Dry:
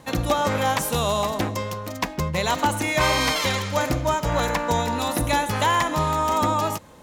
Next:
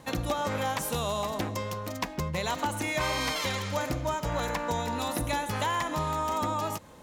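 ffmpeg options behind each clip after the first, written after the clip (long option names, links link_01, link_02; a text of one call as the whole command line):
ffmpeg -i in.wav -af "acompressor=threshold=-27dB:ratio=2,volume=-3dB" out.wav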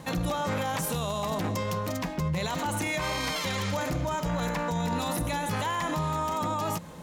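ffmpeg -i in.wav -af "equalizer=frequency=170:width=6.1:gain=12.5,alimiter=level_in=2.5dB:limit=-24dB:level=0:latency=1:release=15,volume=-2.5dB,volume=5dB" out.wav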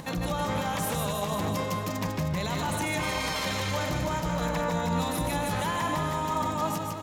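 ffmpeg -i in.wav -filter_complex "[0:a]asplit=2[link_01][link_02];[link_02]aecho=0:1:150|315|496.5|696.2|915.8:0.631|0.398|0.251|0.158|0.1[link_03];[link_01][link_03]amix=inputs=2:normalize=0,acompressor=mode=upward:threshold=-36dB:ratio=2.5,volume=-1.5dB" out.wav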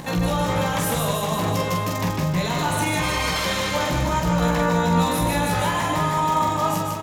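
ffmpeg -i in.wav -af "aecho=1:1:17|45:0.562|0.631,volume=4.5dB" out.wav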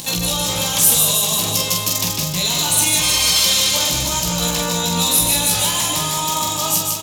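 ffmpeg -i in.wav -af "aexciter=amount=4.3:drive=9.1:freq=2700,volume=-3dB" out.wav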